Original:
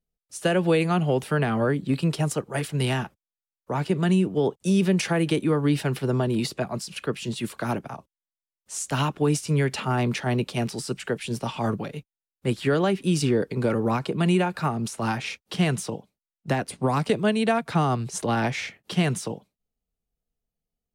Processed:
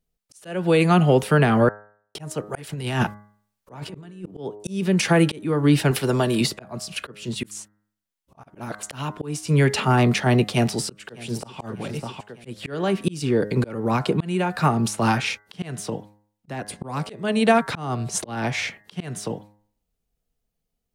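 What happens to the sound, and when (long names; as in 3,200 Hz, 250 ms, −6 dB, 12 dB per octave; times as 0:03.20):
0:01.69–0:02.15: silence
0:02.67–0:04.31: compressor whose output falls as the input rises −28 dBFS, ratio −0.5
0:05.91–0:06.41: spectral tilt +2 dB per octave
0:07.51–0:08.83: reverse
0:10.47–0:11.60: delay throw 600 ms, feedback 30%, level −10 dB
whole clip: hum removal 104 Hz, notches 20; volume swells 437 ms; level +6.5 dB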